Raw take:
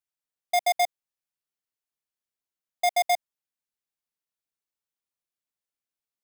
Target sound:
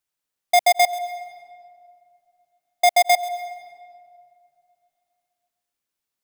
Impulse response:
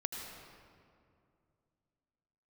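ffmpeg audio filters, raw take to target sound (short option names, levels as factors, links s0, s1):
-filter_complex "[0:a]asplit=2[s0][s1];[1:a]atrim=start_sample=2205,adelay=135[s2];[s1][s2]afir=irnorm=-1:irlink=0,volume=0.178[s3];[s0][s3]amix=inputs=2:normalize=0,volume=2.37"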